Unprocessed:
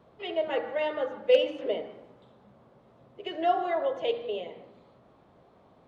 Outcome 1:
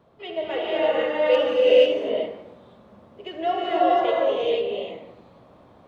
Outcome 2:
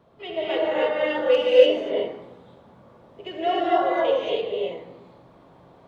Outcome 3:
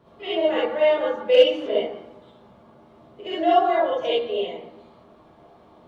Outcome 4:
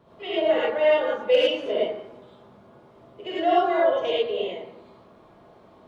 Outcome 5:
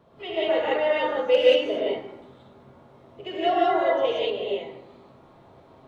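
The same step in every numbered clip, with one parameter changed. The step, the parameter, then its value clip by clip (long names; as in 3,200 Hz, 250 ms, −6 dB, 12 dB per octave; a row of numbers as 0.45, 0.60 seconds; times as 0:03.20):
reverb whose tail is shaped and stops, gate: 520, 320, 90, 130, 210 milliseconds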